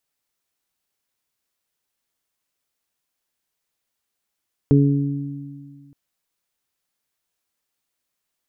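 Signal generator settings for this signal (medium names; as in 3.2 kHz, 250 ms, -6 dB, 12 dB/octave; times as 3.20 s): additive tone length 1.22 s, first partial 141 Hz, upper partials -1/-6.5 dB, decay 1.97 s, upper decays 2.00/0.89 s, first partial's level -12 dB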